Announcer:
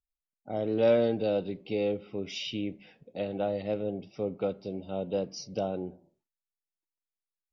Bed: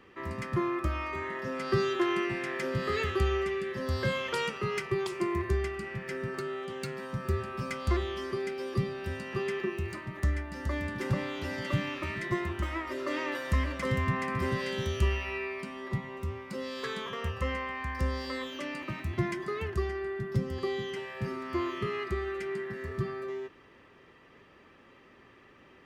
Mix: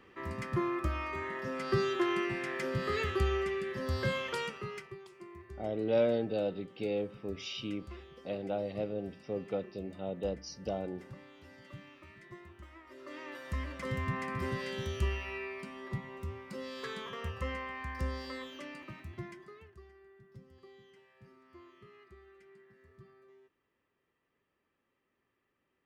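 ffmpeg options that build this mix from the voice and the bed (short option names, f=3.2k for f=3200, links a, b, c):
-filter_complex "[0:a]adelay=5100,volume=-4.5dB[a];[1:a]volume=12dB,afade=t=out:st=4.17:d=0.82:silence=0.141254,afade=t=in:st=12.81:d=1.36:silence=0.188365,afade=t=out:st=18.09:d=1.64:silence=0.112202[b];[a][b]amix=inputs=2:normalize=0"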